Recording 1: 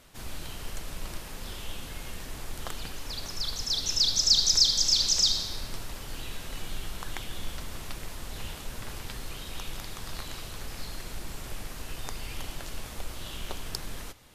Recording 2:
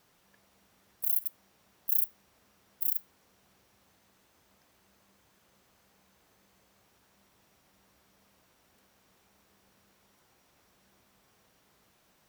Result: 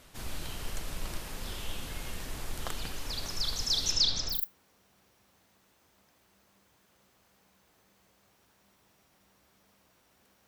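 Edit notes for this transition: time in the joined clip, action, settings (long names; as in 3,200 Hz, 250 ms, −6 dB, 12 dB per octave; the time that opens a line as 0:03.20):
recording 1
0:03.91–0:04.43: low-pass filter 7,500 Hz → 1,700 Hz
0:04.35: continue with recording 2 from 0:02.88, crossfade 0.16 s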